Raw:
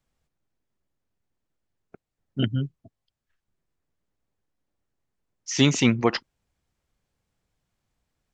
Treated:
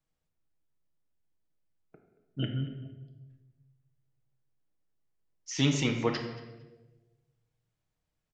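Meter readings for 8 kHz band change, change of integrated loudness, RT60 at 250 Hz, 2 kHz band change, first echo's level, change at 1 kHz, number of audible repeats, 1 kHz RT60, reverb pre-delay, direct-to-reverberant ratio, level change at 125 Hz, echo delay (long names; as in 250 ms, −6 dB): −8.0 dB, −7.5 dB, 1.4 s, −7.5 dB, −19.0 dB, −7.5 dB, 1, 1.0 s, 3 ms, 3.0 dB, −5.5 dB, 228 ms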